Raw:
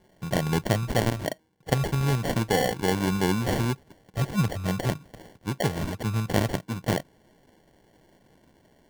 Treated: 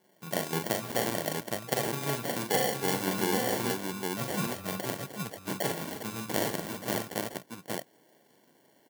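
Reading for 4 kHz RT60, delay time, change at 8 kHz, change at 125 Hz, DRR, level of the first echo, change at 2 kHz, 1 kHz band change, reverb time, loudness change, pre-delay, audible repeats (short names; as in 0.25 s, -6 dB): none, 42 ms, +2.0 dB, -12.5 dB, none, -5.5 dB, -2.5 dB, -2.5 dB, none, -4.5 dB, none, 4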